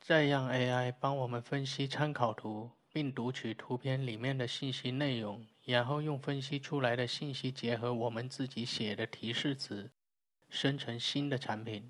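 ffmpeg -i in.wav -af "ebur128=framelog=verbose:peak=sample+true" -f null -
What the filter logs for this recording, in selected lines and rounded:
Integrated loudness:
  I:         -35.8 LUFS
  Threshold: -45.9 LUFS
Loudness range:
  LRA:         2.1 LU
  Threshold: -56.6 LUFS
  LRA low:   -37.8 LUFS
  LRA high:  -35.6 LUFS
Sample peak:
  Peak:      -14.7 dBFS
True peak:
  Peak:      -14.7 dBFS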